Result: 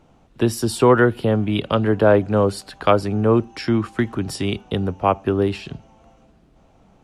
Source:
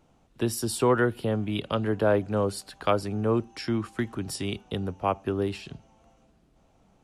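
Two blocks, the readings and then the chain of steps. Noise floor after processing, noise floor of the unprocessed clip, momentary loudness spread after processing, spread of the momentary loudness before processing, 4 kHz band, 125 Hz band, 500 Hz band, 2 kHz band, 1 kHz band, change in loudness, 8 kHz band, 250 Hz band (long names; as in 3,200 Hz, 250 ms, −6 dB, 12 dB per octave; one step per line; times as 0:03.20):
−55 dBFS, −63 dBFS, 9 LU, 8 LU, +6.0 dB, +8.5 dB, +8.5 dB, +8.0 dB, +8.5 dB, +8.5 dB, +2.5 dB, +8.5 dB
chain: high-shelf EQ 5,700 Hz −8.5 dB
level +8.5 dB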